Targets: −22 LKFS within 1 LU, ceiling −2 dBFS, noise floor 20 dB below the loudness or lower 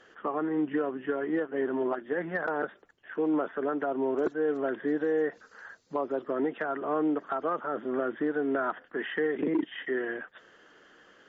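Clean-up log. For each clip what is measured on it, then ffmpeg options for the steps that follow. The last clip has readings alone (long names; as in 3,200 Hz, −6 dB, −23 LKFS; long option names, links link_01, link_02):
integrated loudness −31.0 LKFS; sample peak −18.5 dBFS; target loudness −22.0 LKFS
→ -af "volume=9dB"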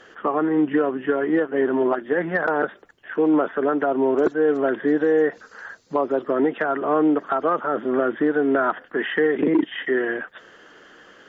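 integrated loudness −22.0 LKFS; sample peak −9.5 dBFS; background noise floor −50 dBFS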